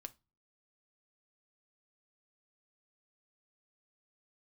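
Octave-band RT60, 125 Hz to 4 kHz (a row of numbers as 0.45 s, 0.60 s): 0.55 s, 0.40 s, 0.25 s, 0.25 s, 0.20 s, 0.25 s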